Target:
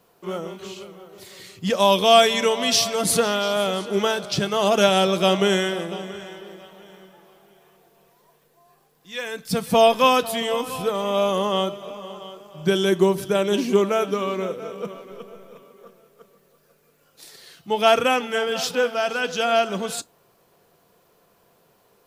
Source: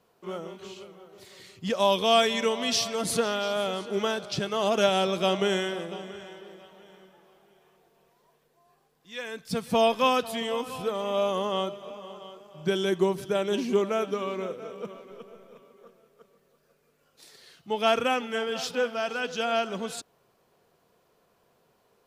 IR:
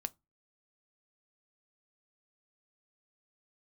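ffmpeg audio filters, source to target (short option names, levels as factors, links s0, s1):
-filter_complex "[0:a]asplit=2[s0][s1];[1:a]atrim=start_sample=2205,highshelf=f=9900:g=11[s2];[s1][s2]afir=irnorm=-1:irlink=0,volume=2.99[s3];[s0][s3]amix=inputs=2:normalize=0,volume=0.562"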